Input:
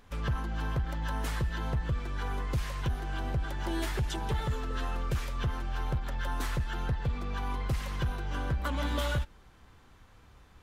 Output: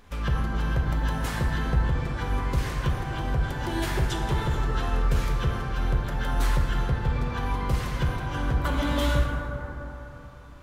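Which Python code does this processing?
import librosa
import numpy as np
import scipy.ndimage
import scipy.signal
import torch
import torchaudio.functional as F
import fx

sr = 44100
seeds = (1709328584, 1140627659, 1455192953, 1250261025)

y = fx.rev_plate(x, sr, seeds[0], rt60_s=3.5, hf_ratio=0.3, predelay_ms=0, drr_db=0.5)
y = y * 10.0 ** (3.5 / 20.0)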